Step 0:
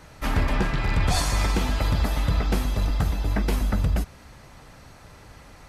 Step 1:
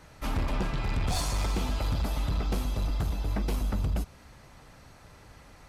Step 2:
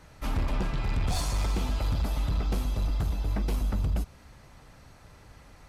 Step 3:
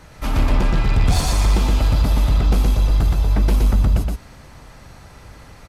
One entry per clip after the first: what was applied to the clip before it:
dynamic bell 1.8 kHz, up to -7 dB, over -50 dBFS, Q 2.8; hard clipper -18.5 dBFS, distortion -17 dB; trim -5 dB
bass shelf 130 Hz +3.5 dB; trim -1.5 dB
delay 120 ms -3 dB; trim +8.5 dB

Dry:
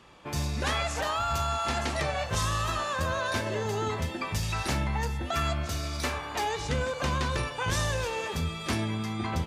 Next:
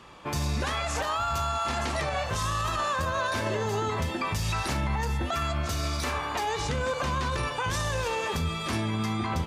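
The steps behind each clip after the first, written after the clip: peaking EQ 1.1 kHz +3.5 dB 0.54 oct; peak limiter -24 dBFS, peak gain reduction 8.5 dB; trim +4 dB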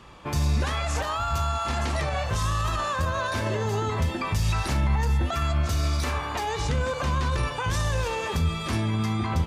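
bass shelf 120 Hz +9.5 dB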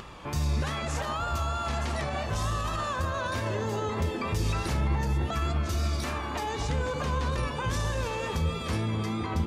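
upward compressor, threshold -33 dBFS; vibrato 3.3 Hz 36 cents; band-passed feedback delay 255 ms, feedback 79%, band-pass 310 Hz, level -3.5 dB; trim -4 dB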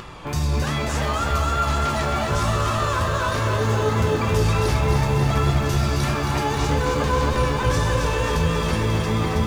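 on a send at -6 dB: reverberation RT60 0.50 s, pre-delay 7 ms; on the sum: bit-crushed delay 269 ms, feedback 80%, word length 9-bit, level -5 dB; trim +5 dB

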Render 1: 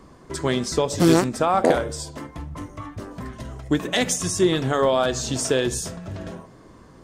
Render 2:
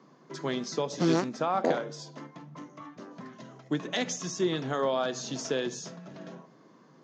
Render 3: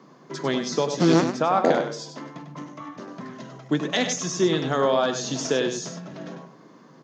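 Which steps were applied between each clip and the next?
Chebyshev band-pass 140–6600 Hz, order 5; trim -8 dB
delay 98 ms -8 dB; trim +6.5 dB

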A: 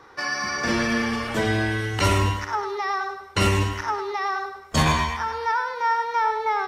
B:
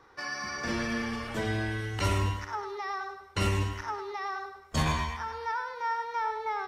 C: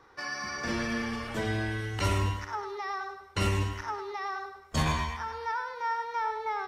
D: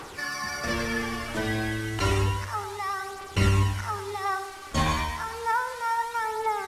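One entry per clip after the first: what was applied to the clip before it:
bass shelf 78 Hz +7.5 dB; trim -9 dB
no audible change
one-bit delta coder 64 kbps, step -40 dBFS; phaser 0.31 Hz, delay 3.8 ms, feedback 42%; feedback delay 174 ms, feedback 54%, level -19 dB; trim +3 dB

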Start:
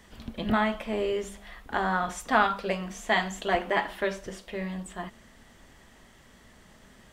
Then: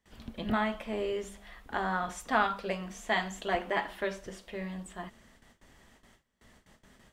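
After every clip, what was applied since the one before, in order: gate with hold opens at -44 dBFS; trim -4.5 dB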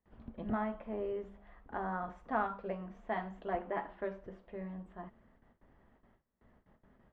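low-pass 1.2 kHz 12 dB/octave; trim -4.5 dB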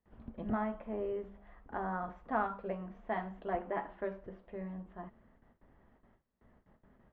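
distance through air 150 m; trim +1 dB

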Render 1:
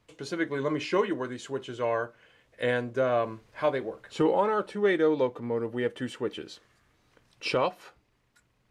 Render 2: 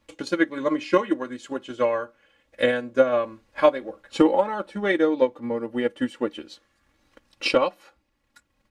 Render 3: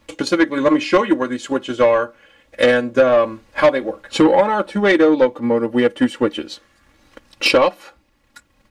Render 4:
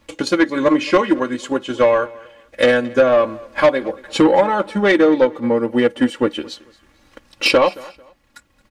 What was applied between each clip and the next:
comb 3.6 ms, depth 69%; transient shaper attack +8 dB, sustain -4 dB
in parallel at +1.5 dB: peak limiter -13 dBFS, peak gain reduction 9 dB; on the sum: saturation -10.5 dBFS, distortion -13 dB; trim +4.5 dB
feedback delay 222 ms, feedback 27%, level -22 dB

